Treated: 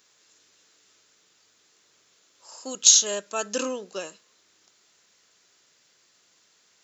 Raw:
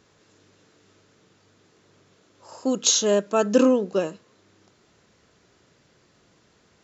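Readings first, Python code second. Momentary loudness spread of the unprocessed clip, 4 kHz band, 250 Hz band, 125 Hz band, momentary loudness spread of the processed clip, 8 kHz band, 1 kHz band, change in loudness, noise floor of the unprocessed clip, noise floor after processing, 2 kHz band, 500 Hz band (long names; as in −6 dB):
10 LU, +2.5 dB, −15.5 dB, below −15 dB, 22 LU, can't be measured, −6.5 dB, +0.5 dB, −62 dBFS, −64 dBFS, −2.0 dB, −11.0 dB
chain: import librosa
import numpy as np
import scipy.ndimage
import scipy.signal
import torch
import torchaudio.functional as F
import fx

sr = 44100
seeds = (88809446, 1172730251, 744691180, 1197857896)

y = fx.tilt_eq(x, sr, slope=4.5)
y = y * 10.0 ** (-6.5 / 20.0)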